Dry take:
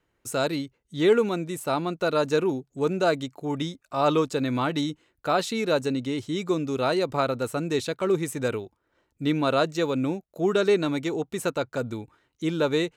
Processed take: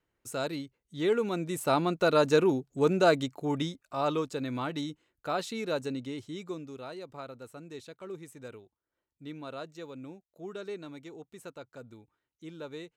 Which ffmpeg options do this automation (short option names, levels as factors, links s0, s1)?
-af "afade=t=in:st=1.18:d=0.48:silence=0.421697,afade=t=out:st=3.29:d=0.83:silence=0.398107,afade=t=out:st=5.95:d=0.91:silence=0.316228"